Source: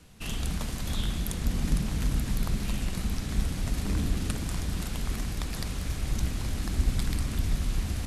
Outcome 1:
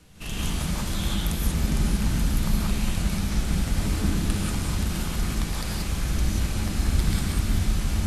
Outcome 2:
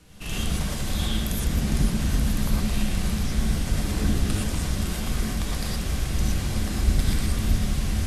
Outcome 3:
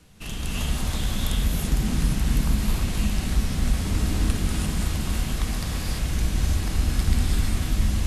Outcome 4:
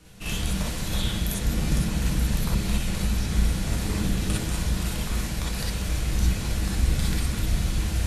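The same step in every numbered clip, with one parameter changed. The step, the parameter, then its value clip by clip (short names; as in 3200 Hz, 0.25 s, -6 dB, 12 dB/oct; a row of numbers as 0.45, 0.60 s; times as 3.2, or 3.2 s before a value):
non-linear reverb, gate: 210, 140, 370, 80 ms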